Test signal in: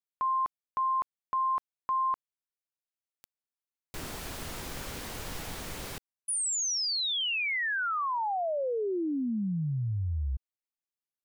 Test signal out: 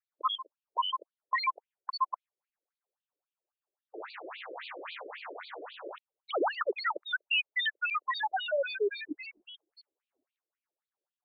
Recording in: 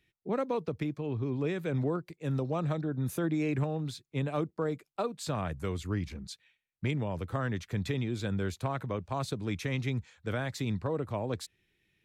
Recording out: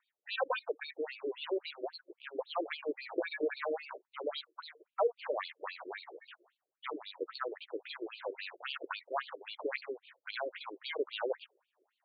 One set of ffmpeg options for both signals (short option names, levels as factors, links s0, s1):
-af "acrusher=samples=15:mix=1:aa=0.000001:lfo=1:lforange=15:lforate=0.37,adynamicequalizer=threshold=0.001:dfrequency=5600:dqfactor=7.1:tfrequency=5600:tqfactor=7.1:attack=5:release=100:ratio=0.438:range=1.5:mode=boostabove:tftype=bell,afftfilt=real='re*between(b*sr/1024,420*pow(3400/420,0.5+0.5*sin(2*PI*3.7*pts/sr))/1.41,420*pow(3400/420,0.5+0.5*sin(2*PI*3.7*pts/sr))*1.41)':imag='im*between(b*sr/1024,420*pow(3400/420,0.5+0.5*sin(2*PI*3.7*pts/sr))/1.41,420*pow(3400/420,0.5+0.5*sin(2*PI*3.7*pts/sr))*1.41)':win_size=1024:overlap=0.75,volume=1.78"